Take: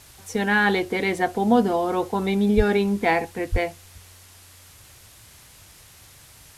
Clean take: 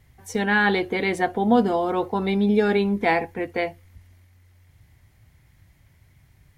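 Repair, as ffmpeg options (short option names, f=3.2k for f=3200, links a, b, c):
-filter_complex "[0:a]asplit=3[a][b][c];[a]afade=t=out:st=2.56:d=0.02[d];[b]highpass=f=140:w=0.5412,highpass=f=140:w=1.3066,afade=t=in:st=2.56:d=0.02,afade=t=out:st=2.68:d=0.02[e];[c]afade=t=in:st=2.68:d=0.02[f];[d][e][f]amix=inputs=3:normalize=0,asplit=3[g][h][i];[g]afade=t=out:st=3.51:d=0.02[j];[h]highpass=f=140:w=0.5412,highpass=f=140:w=1.3066,afade=t=in:st=3.51:d=0.02,afade=t=out:st=3.63:d=0.02[k];[i]afade=t=in:st=3.63:d=0.02[l];[j][k][l]amix=inputs=3:normalize=0,afwtdn=0.004"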